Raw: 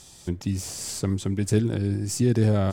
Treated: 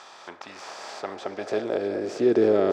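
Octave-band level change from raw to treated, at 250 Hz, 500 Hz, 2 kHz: −2.5, +6.5, +3.0 decibels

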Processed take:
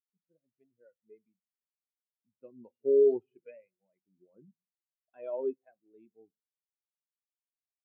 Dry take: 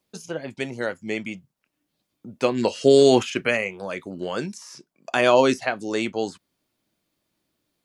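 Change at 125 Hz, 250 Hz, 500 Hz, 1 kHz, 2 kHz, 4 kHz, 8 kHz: below −30 dB, −19.0 dB, −10.0 dB, below −30 dB, below −40 dB, below −40 dB, below −40 dB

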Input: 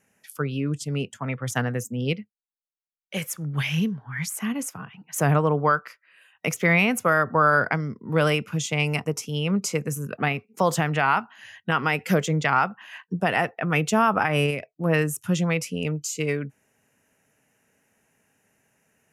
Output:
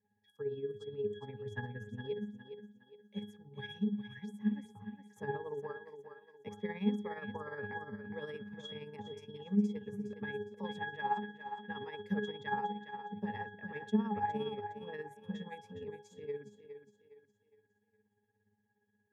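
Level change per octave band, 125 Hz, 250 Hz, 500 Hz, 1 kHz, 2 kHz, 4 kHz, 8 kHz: −19.5 dB, −11.0 dB, −14.0 dB, −15.5 dB, −19.5 dB, −17.0 dB, below −35 dB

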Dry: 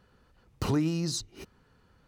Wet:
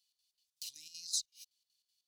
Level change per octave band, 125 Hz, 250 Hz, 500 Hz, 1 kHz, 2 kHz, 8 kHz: below −40 dB, below −40 dB, below −40 dB, below −40 dB, −19.0 dB, 0.0 dB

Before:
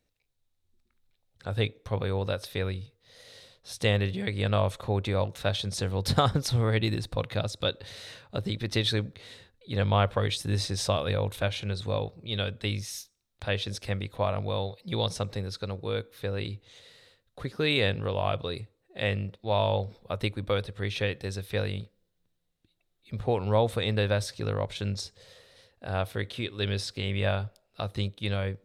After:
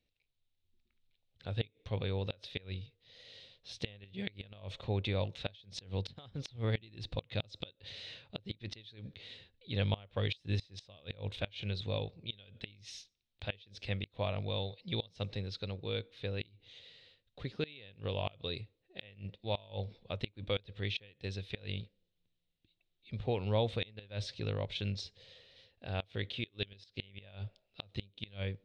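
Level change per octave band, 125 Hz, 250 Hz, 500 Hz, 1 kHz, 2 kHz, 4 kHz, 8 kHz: −9.0, −9.5, −10.5, −14.0, −10.5, −8.5, −17.5 decibels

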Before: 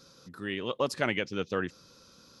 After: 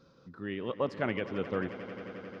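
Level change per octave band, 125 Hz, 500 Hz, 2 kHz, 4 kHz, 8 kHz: 0.0 dB, −1.0 dB, −5.5 dB, −10.0 dB, below −20 dB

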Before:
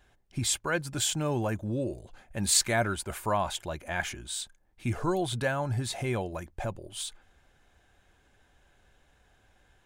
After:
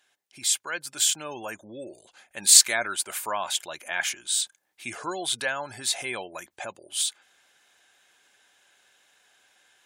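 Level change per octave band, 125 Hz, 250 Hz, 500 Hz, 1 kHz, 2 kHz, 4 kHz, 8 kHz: −20.0, −9.5, −4.5, −0.5, +3.5, +8.0, +9.0 decibels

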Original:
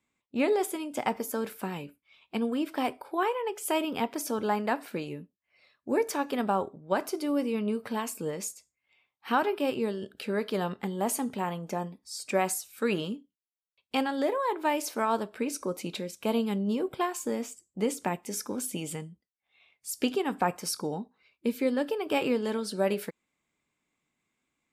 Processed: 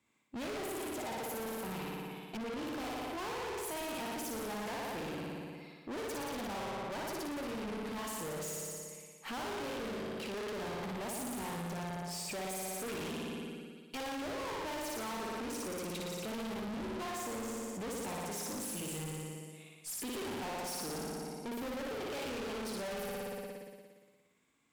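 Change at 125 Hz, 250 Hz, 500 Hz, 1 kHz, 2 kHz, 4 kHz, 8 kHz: −5.0, −9.5, −9.5, −9.5, −6.0, −4.0, −4.5 decibels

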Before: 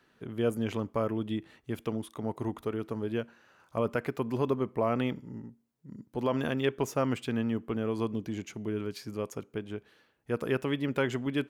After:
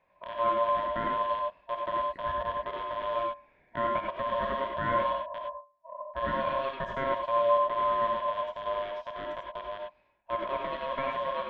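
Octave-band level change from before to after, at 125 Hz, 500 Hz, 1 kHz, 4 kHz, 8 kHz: −12.0 dB, +1.5 dB, +12.0 dB, +0.5 dB, below −20 dB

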